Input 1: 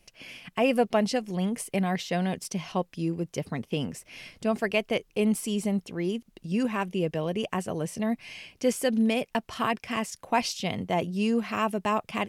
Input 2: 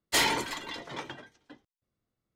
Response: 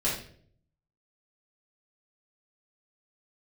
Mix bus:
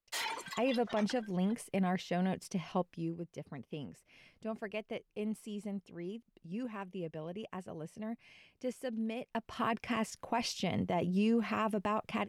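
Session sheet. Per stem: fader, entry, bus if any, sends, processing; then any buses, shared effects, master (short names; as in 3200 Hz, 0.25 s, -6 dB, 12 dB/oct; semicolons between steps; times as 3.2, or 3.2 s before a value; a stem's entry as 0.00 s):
2.8 s -11.5 dB -> 3.3 s -20 dB -> 9.16 s -20 dB -> 9.74 s -7.5 dB, 0.00 s, no send, gate with hold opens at -52 dBFS; high shelf 3400 Hz -8.5 dB
-6.5 dB, 0.00 s, no send, reverb removal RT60 1.5 s; HPF 620 Hz 12 dB/oct; limiter -22.5 dBFS, peak gain reduction 8 dB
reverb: off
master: AGC gain up to 7 dB; limiter -23 dBFS, peak gain reduction 9.5 dB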